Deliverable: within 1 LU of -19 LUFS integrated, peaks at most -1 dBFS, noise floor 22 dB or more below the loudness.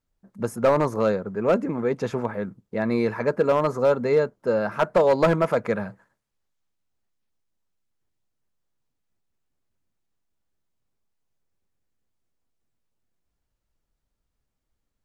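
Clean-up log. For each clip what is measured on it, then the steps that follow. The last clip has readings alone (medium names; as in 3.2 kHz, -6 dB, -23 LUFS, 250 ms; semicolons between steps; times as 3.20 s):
clipped samples 0.4%; clipping level -12.0 dBFS; loudness -23.5 LUFS; peak level -12.0 dBFS; loudness target -19.0 LUFS
-> clip repair -12 dBFS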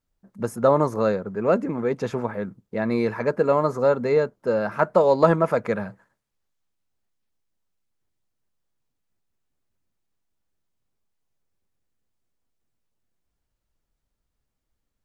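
clipped samples 0.0%; loudness -22.5 LUFS; peak level -3.0 dBFS; loudness target -19.0 LUFS
-> trim +3.5 dB; peak limiter -1 dBFS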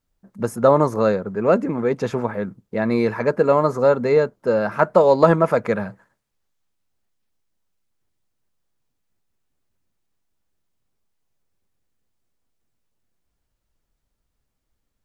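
loudness -19.0 LUFS; peak level -1.0 dBFS; noise floor -76 dBFS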